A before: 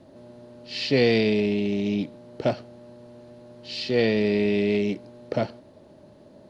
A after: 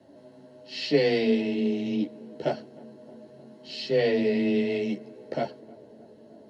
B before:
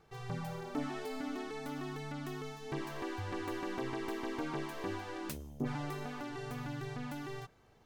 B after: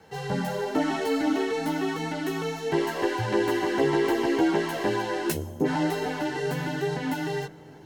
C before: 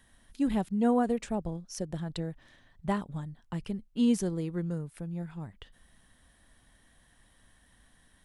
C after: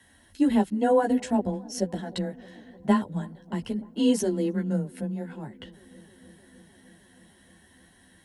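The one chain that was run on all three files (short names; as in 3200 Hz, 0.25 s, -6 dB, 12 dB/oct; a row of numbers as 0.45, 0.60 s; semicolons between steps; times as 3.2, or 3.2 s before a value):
notch comb 1200 Hz; chorus voices 4, 0.92 Hz, delay 13 ms, depth 3 ms; frequency shift +17 Hz; darkening echo 0.308 s, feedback 82%, low-pass 1400 Hz, level -23.5 dB; match loudness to -27 LUFS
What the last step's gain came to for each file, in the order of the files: +0.5, +17.5, +10.0 dB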